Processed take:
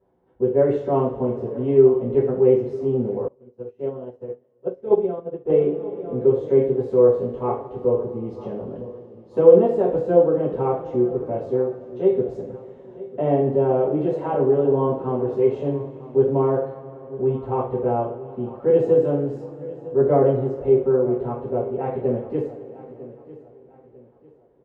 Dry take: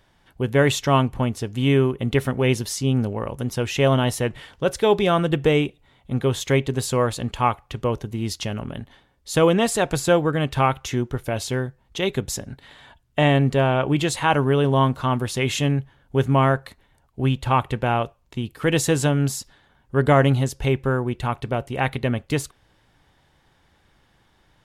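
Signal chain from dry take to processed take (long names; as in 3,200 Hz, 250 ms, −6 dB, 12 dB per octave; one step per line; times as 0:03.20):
resonant band-pass 480 Hz, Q 2.7
spectral tilt −3 dB per octave
repeating echo 949 ms, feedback 35%, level −18 dB
coupled-rooms reverb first 0.44 s, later 3.9 s, from −21 dB, DRR −10 dB
0:03.28–0:05.50: expander for the loud parts 2.5 to 1, over −22 dBFS
level −7 dB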